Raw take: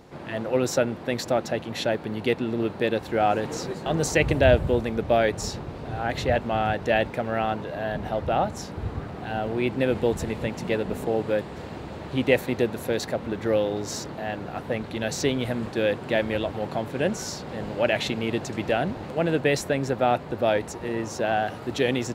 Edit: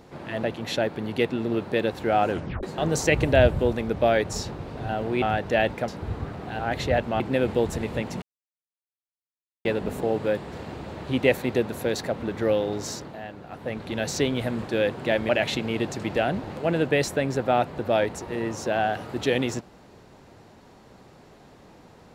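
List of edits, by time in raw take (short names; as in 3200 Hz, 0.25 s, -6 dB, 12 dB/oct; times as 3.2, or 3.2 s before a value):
0.43–1.51 cut
3.38 tape stop 0.33 s
5.97–6.58 swap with 9.34–9.67
7.24–8.63 cut
10.69 insert silence 1.43 s
13.85–14.98 dip -8 dB, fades 0.46 s
16.33–17.82 cut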